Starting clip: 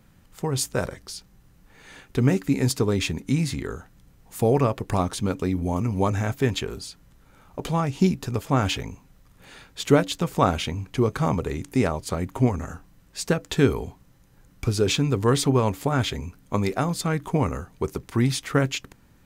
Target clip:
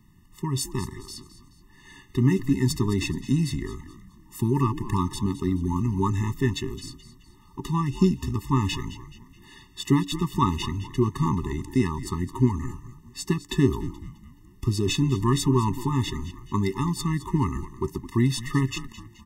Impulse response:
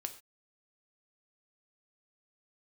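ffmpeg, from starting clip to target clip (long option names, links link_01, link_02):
-filter_complex "[0:a]asplit=5[link_01][link_02][link_03][link_04][link_05];[link_02]adelay=213,afreqshift=-120,volume=-14.5dB[link_06];[link_03]adelay=426,afreqshift=-240,volume=-22.7dB[link_07];[link_04]adelay=639,afreqshift=-360,volume=-30.9dB[link_08];[link_05]adelay=852,afreqshift=-480,volume=-39dB[link_09];[link_01][link_06][link_07][link_08][link_09]amix=inputs=5:normalize=0,afftfilt=real='re*eq(mod(floor(b*sr/1024/430),2),0)':imag='im*eq(mod(floor(b*sr/1024/430),2),0)':win_size=1024:overlap=0.75"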